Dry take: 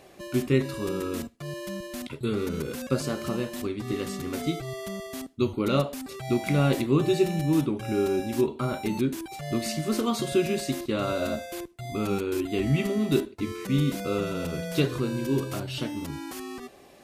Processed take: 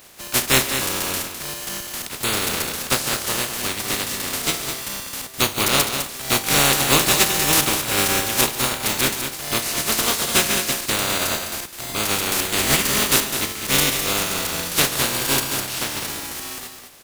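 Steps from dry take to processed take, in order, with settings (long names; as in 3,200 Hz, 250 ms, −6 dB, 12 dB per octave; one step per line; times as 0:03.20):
compressing power law on the bin magnitudes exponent 0.22
multi-tap delay 142/206 ms −15.5/−8 dB
level +5.5 dB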